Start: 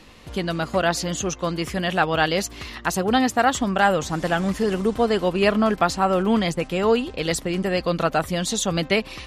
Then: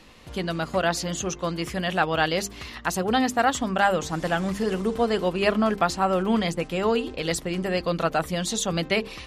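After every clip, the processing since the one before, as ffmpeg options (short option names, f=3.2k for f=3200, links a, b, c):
-af "bandreject=f=50:t=h:w=6,bandreject=f=100:t=h:w=6,bandreject=f=150:t=h:w=6,bandreject=f=200:t=h:w=6,bandreject=f=250:t=h:w=6,bandreject=f=300:t=h:w=6,bandreject=f=350:t=h:w=6,bandreject=f=400:t=h:w=6,bandreject=f=450:t=h:w=6,volume=-2.5dB"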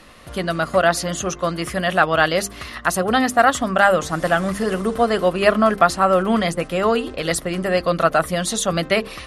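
-af "superequalizer=8b=1.78:10b=2:11b=1.58:16b=2.24,volume=3.5dB"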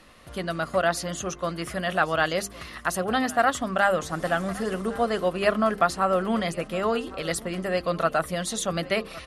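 -af "aecho=1:1:1113:0.106,volume=-7dB"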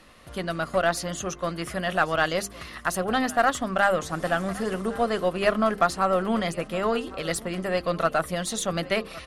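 -af "aeval=exprs='0.398*(cos(1*acos(clip(val(0)/0.398,-1,1)))-cos(1*PI/2))+0.00891*(cos(8*acos(clip(val(0)/0.398,-1,1)))-cos(8*PI/2))':c=same"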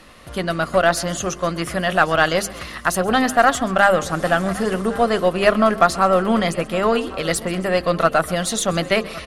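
-af "aecho=1:1:132|264|396|528:0.1|0.051|0.026|0.0133,volume=7dB"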